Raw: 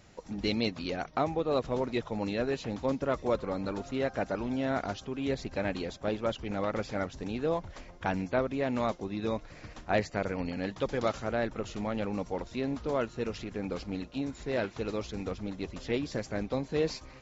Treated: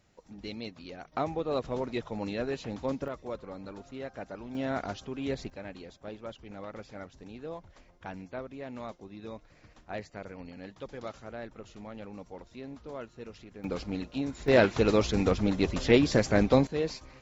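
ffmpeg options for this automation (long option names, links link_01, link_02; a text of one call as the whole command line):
ffmpeg -i in.wav -af "asetnsamples=nb_out_samples=441:pad=0,asendcmd='1.12 volume volume -2dB;3.08 volume volume -9dB;4.55 volume volume -1.5dB;5.5 volume volume -10.5dB;13.64 volume volume 1.5dB;14.48 volume volume 10dB;16.67 volume volume -1.5dB',volume=-10dB" out.wav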